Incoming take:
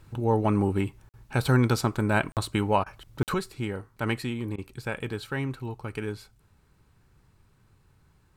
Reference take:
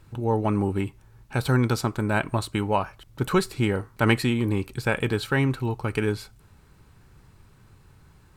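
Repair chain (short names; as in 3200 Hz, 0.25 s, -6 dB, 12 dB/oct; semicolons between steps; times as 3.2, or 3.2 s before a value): interpolate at 1.09/2.32/3.23, 48 ms; interpolate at 1.11/2.84/4.56, 21 ms; gain 0 dB, from 3.34 s +8 dB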